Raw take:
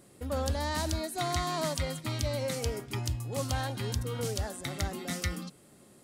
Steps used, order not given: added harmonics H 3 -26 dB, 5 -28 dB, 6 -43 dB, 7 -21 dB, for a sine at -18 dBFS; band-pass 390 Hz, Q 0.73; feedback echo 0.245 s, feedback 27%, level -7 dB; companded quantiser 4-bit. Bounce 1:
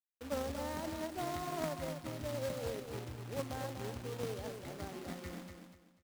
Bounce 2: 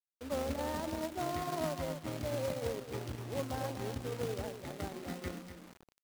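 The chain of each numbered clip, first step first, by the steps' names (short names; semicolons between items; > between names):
band-pass > added harmonics > companded quantiser > feedback echo; feedback echo > added harmonics > band-pass > companded quantiser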